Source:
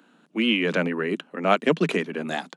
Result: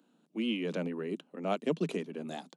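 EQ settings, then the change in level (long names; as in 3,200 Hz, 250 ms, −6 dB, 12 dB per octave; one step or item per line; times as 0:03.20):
parametric band 1,700 Hz −11.5 dB 1.5 octaves
−8.5 dB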